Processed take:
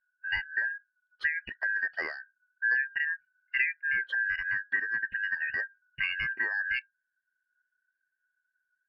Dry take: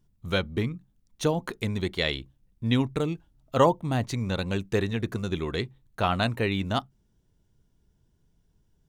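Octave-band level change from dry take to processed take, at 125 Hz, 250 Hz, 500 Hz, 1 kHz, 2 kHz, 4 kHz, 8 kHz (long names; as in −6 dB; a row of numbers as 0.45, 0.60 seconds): below −25 dB, below −25 dB, −25.0 dB, −20.5 dB, +9.5 dB, −10.0 dB, below −30 dB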